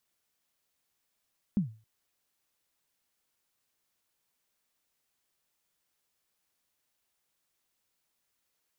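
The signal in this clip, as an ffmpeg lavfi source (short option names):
-f lavfi -i "aevalsrc='0.1*pow(10,-3*t/0.35)*sin(2*PI*(220*0.118/log(110/220)*(exp(log(110/220)*min(t,0.118)/0.118)-1)+110*max(t-0.118,0)))':d=0.27:s=44100"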